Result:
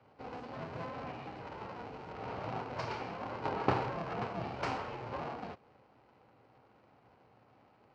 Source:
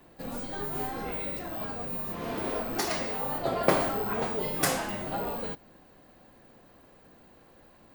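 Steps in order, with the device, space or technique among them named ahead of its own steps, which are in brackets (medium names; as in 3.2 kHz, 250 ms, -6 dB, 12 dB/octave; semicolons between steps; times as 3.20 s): ring modulator pedal into a guitar cabinet (polarity switched at an audio rate 250 Hz; cabinet simulation 92–4100 Hz, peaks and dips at 120 Hz +8 dB, 800 Hz +4 dB, 1.8 kHz -5 dB, 3.5 kHz -10 dB); trim -7 dB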